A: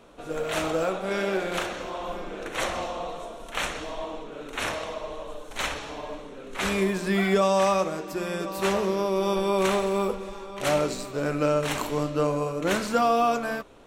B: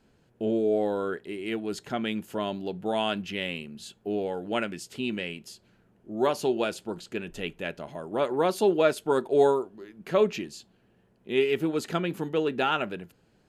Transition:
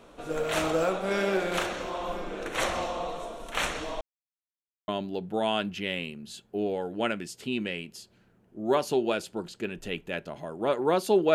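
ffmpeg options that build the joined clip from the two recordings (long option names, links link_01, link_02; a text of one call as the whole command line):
ffmpeg -i cue0.wav -i cue1.wav -filter_complex "[0:a]apad=whole_dur=11.34,atrim=end=11.34,asplit=2[link_01][link_02];[link_01]atrim=end=4.01,asetpts=PTS-STARTPTS,afade=type=out:start_time=4.006:duration=0.004:curve=hsin[link_03];[link_02]atrim=start=4.01:end=4.88,asetpts=PTS-STARTPTS,volume=0[link_04];[1:a]atrim=start=2.4:end=8.86,asetpts=PTS-STARTPTS,afade=type=in:duration=0.004:curve=hsin[link_05];[link_03][link_04][link_05]concat=n=3:v=0:a=1" out.wav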